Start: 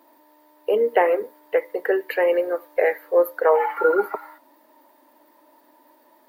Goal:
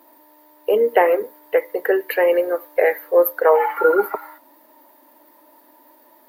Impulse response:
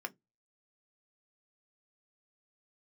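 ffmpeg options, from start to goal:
-af "equalizer=f=13000:w=2:g=12.5,volume=1.41"

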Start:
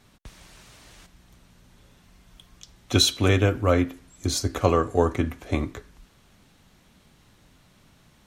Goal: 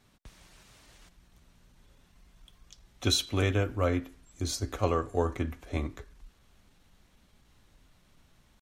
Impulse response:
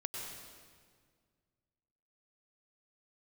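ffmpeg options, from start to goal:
-af "asubboost=boost=2.5:cutoff=72,atempo=0.96,volume=0.447"

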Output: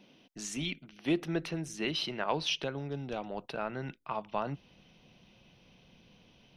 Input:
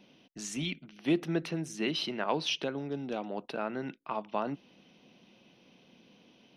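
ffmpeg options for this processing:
-af "asubboost=boost=12:cutoff=79"

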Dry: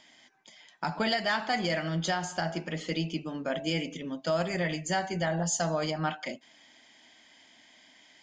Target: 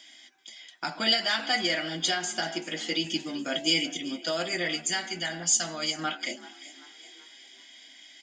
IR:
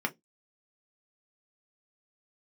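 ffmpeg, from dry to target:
-filter_complex "[0:a]asettb=1/sr,asplit=3[s0][s1][s2];[s0]atrim=end=4.754[s3];[s1]atrim=start=4.75:end=5.98,asetpts=PTS-STARTPTS,afade=t=in:d=0.004:c=qsin,afade=t=out:st=1.226:d=0.004:c=qsin,equalizer=f=510:w=0.95:g=-8.5[s4];[s2]atrim=start=5.976[s5];[s3][s4]acrossfade=d=0.004:c1=hsin:c2=qsin[s6];[s6][s5]acrossfade=d=0.004:c1=qsin:c2=hsin,asplit=5[s7][s8][s9][s10][s11];[s8]adelay=384,afreqshift=57,volume=0.126[s12];[s9]adelay=768,afreqshift=114,volume=0.0603[s13];[s10]adelay=1152,afreqshift=171,volume=0.0288[s14];[s11]adelay=1536,afreqshift=228,volume=0.014[s15];[s7][s12][s13][s14][s15]amix=inputs=5:normalize=0,crystalizer=i=7:c=0,asettb=1/sr,asplit=3[s16][s17][s18];[s16]atrim=end=3.044[s19];[s17]atrim=start=3.04:end=4.17,asetpts=PTS-STARTPTS,afade=t=in:d=0.004:c=qsin,afade=t=out:st=1.126:d=0.004:c=qsin,bass=f=250:g=4,treble=f=4000:g=6[s20];[s18]atrim=start=4.166[s21];[s19][s20]acrossfade=d=0.004:c1=hsin:c2=qsin[s22];[s22][s21]acrossfade=d=0.004:c1=qsin:c2=hsin[s23];[1:a]atrim=start_sample=2205,asetrate=70560,aresample=44100[s24];[s23][s24]afir=irnorm=-1:irlink=0,volume=0.473"

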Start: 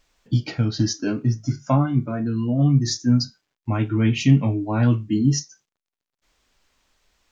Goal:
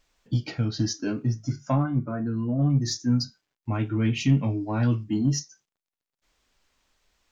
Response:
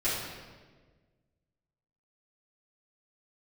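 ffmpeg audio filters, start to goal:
-filter_complex "[0:a]asettb=1/sr,asplit=3[s0][s1][s2];[s0]atrim=end=4.444[s3];[s1]atrim=start=4.44:end=5.04,asetpts=PTS-STARTPTS,afade=t=in:d=0.004:c=qsin,afade=t=out:st=0.596:d=0.004:c=qsin,equalizer=f=5100:w=4.8:g=15[s4];[s2]atrim=start=5.036[s5];[s3][s4]acrossfade=d=0.004:c1=hsin:c2=qsin[s6];[s6][s5]acrossfade=d=0.004:c1=qsin:c2=hsin,asplit=2[s7][s8];[s8]asoftclip=type=tanh:threshold=0.119,volume=0.376[s9];[s7][s9]amix=inputs=2:normalize=0,asettb=1/sr,asplit=3[s10][s11][s12];[s10]atrim=end=1.834[s13];[s11]atrim=start=1.83:end=2.7,asetpts=PTS-STARTPTS,afade=t=in:d=0.004:c=qsin,afade=t=out:st=0.866:d=0.004:c=qsin,highshelf=f=2000:t=q:w=1.5:g=-8[s14];[s12]atrim=start=2.696[s15];[s13][s14]acrossfade=d=0.004:c1=hsin:c2=qsin[s16];[s16][s15]acrossfade=d=0.004:c1=qsin:c2=hsin,volume=0.473"

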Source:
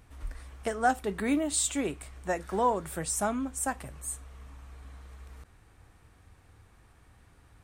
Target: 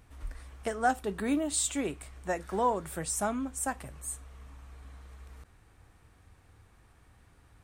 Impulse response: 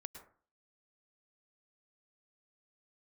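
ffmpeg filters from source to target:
-filter_complex "[0:a]asettb=1/sr,asplit=3[s0][s1][s2];[s0]atrim=end=0.994[s3];[s1]atrim=start=0.99:end=1.48,asetpts=PTS-STARTPTS,afade=t=in:d=0.004:c=qsin,afade=t=out:st=0.486:d=0.004:c=qsin,equalizer=f=2100:w=7:g=-8[s4];[s2]atrim=start=1.476[s5];[s3][s4]acrossfade=d=0.004:c1=hsin:c2=qsin[s6];[s6][s5]acrossfade=d=0.004:c1=qsin:c2=hsin,volume=0.841"

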